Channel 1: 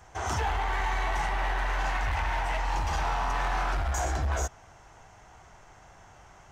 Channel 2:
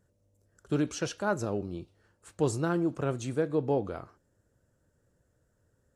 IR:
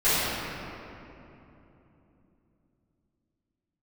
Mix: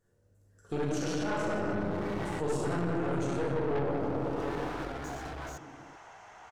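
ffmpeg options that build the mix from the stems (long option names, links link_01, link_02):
-filter_complex "[0:a]asplit=2[link_01][link_02];[link_02]highpass=frequency=720:poles=1,volume=26dB,asoftclip=type=tanh:threshold=-22dB[link_03];[link_01][link_03]amix=inputs=2:normalize=0,lowpass=frequency=2700:poles=1,volume=-6dB,adelay=1100,volume=-9dB[link_04];[1:a]lowshelf=frequency=200:gain=-4,volume=-5dB,asplit=3[link_05][link_06][link_07];[link_06]volume=-4.5dB[link_08];[link_07]apad=whole_len=335711[link_09];[link_04][link_09]sidechaincompress=threshold=-49dB:ratio=8:attack=16:release=477[link_10];[2:a]atrim=start_sample=2205[link_11];[link_08][link_11]afir=irnorm=-1:irlink=0[link_12];[link_10][link_05][link_12]amix=inputs=3:normalize=0,aeval=exprs='(tanh(11.2*val(0)+0.75)-tanh(0.75))/11.2':channel_layout=same,alimiter=limit=-23dB:level=0:latency=1:release=32"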